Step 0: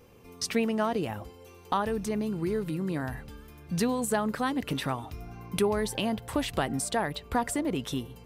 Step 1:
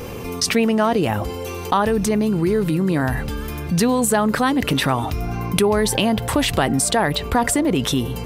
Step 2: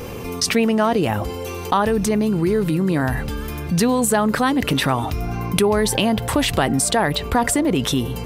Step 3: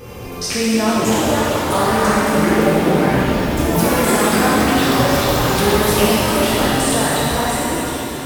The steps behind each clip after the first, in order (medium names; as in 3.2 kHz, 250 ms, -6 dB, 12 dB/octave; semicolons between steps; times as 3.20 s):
level flattener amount 50%; trim +7.5 dB
no audible change
fade out at the end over 1.06 s; ever faster or slower copies 736 ms, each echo +5 st, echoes 2; pitch-shifted reverb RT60 3.2 s, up +7 st, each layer -8 dB, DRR -8.5 dB; trim -7.5 dB